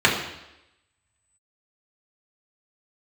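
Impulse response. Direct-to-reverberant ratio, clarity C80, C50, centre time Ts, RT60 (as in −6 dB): −4.5 dB, 8.0 dB, 5.5 dB, 35 ms, 0.90 s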